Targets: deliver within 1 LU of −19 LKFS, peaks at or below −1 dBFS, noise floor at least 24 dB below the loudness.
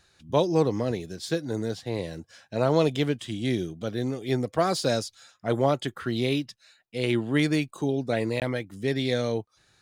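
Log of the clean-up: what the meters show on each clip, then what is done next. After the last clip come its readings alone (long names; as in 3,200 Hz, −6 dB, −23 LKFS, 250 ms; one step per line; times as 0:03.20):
number of dropouts 1; longest dropout 18 ms; integrated loudness −27.5 LKFS; sample peak −8.5 dBFS; target loudness −19.0 LKFS
→ repair the gap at 0:08.40, 18 ms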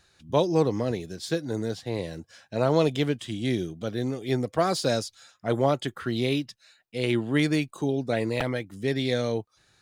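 number of dropouts 0; integrated loudness −27.5 LKFS; sample peak −8.5 dBFS; target loudness −19.0 LKFS
→ level +8.5 dB
brickwall limiter −1 dBFS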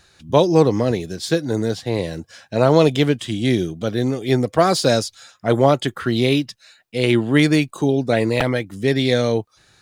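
integrated loudness −19.0 LKFS; sample peak −1.0 dBFS; background noise floor −57 dBFS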